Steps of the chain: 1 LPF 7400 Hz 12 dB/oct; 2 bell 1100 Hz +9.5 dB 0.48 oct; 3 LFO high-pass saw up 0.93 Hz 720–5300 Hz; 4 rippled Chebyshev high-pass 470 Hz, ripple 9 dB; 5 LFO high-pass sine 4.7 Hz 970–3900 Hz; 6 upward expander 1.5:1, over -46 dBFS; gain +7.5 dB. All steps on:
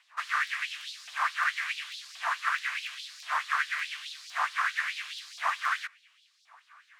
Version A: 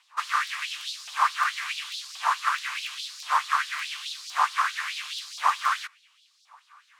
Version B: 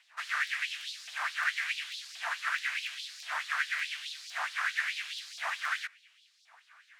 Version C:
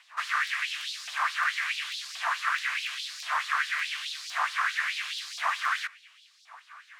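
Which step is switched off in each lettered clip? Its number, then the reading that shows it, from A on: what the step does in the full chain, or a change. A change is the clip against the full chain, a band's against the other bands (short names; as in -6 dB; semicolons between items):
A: 4, 2 kHz band -6.0 dB; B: 2, 1 kHz band -6.5 dB; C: 6, 4 kHz band +3.0 dB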